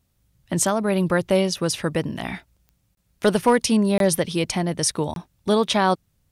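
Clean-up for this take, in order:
clipped peaks rebuilt −8 dBFS
click removal
repair the gap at 0:02.95/0:03.98/0:05.14, 22 ms

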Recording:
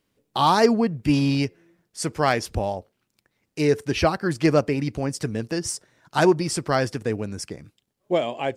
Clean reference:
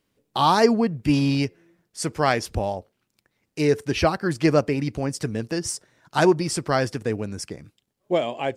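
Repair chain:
clipped peaks rebuilt −7.5 dBFS

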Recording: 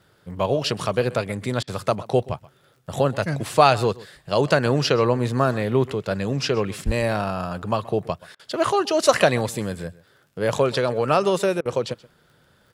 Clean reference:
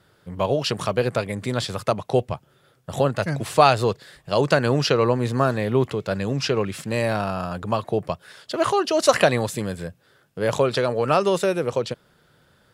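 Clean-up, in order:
click removal
0:06.85–0:06.97: high-pass filter 140 Hz 24 dB per octave
repair the gap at 0:01.63/0:08.35/0:11.61, 43 ms
echo removal 128 ms −20.5 dB

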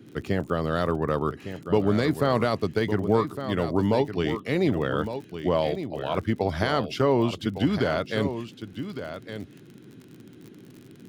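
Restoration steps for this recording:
click removal
noise reduction from a noise print 23 dB
echo removal 1,159 ms −10 dB

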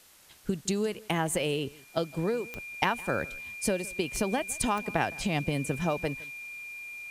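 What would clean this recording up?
click removal
notch filter 2,400 Hz, Q 30
noise reduction from a noise print 25 dB
echo removal 162 ms −22.5 dB

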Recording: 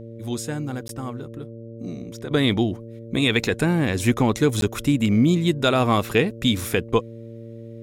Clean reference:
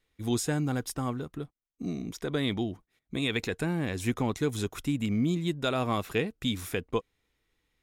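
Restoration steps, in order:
hum removal 114.6 Hz, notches 5
repair the gap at 0:00.88/0:04.61, 12 ms
level 0 dB, from 0:02.31 −9.5 dB

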